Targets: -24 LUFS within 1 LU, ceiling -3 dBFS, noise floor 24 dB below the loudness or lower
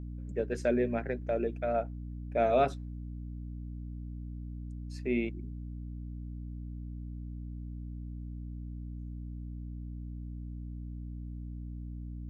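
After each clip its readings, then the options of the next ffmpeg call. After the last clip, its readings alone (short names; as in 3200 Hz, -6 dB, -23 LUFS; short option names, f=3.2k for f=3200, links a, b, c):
hum 60 Hz; harmonics up to 300 Hz; hum level -38 dBFS; loudness -36.5 LUFS; peak -16.0 dBFS; loudness target -24.0 LUFS
-> -af "bandreject=f=60:t=h:w=6,bandreject=f=120:t=h:w=6,bandreject=f=180:t=h:w=6,bandreject=f=240:t=h:w=6,bandreject=f=300:t=h:w=6"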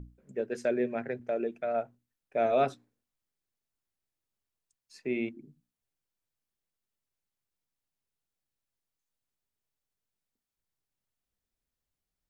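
hum none; loudness -32.0 LUFS; peak -16.0 dBFS; loudness target -24.0 LUFS
-> -af "volume=8dB"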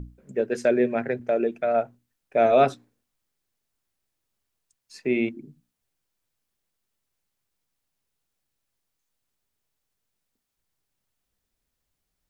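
loudness -24.0 LUFS; peak -8.0 dBFS; noise floor -81 dBFS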